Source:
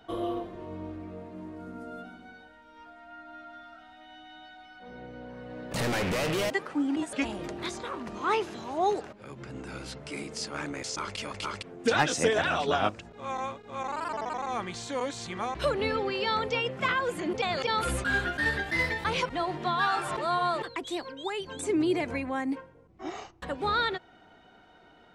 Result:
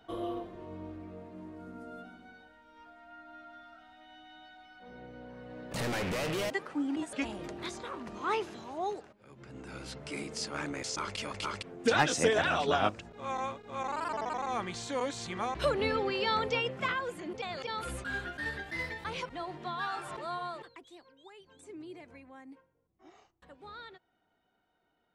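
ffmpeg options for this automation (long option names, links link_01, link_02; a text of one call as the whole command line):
ffmpeg -i in.wav -af "volume=8dB,afade=type=out:start_time=8.45:duration=0.74:silence=0.334965,afade=type=in:start_time=9.19:duration=0.88:silence=0.237137,afade=type=out:start_time=16.53:duration=0.66:silence=0.421697,afade=type=out:start_time=20.28:duration=0.62:silence=0.281838" out.wav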